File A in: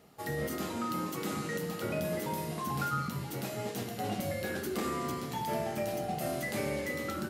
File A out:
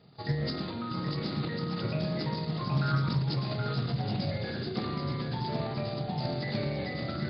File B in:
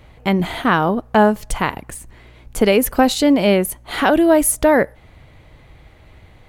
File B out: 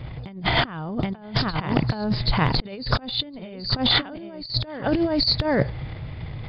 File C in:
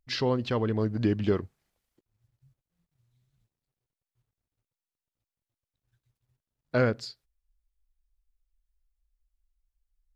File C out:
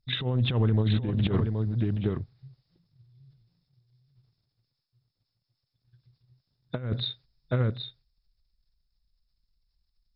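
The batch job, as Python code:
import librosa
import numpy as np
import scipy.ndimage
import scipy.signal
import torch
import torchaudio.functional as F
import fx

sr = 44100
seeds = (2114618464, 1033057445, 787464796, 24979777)

p1 = fx.freq_compress(x, sr, knee_hz=3400.0, ratio=4.0)
p2 = fx.peak_eq(p1, sr, hz=130.0, db=14.0, octaves=0.97)
p3 = fx.transient(p2, sr, attack_db=5, sustain_db=9)
p4 = p3 + fx.echo_single(p3, sr, ms=774, db=-6.5, dry=0)
p5 = fx.over_compress(p4, sr, threshold_db=-19.0, ratio=-0.5)
p6 = fx.doppler_dist(p5, sr, depth_ms=0.16)
y = p6 * librosa.db_to_amplitude(-5.0)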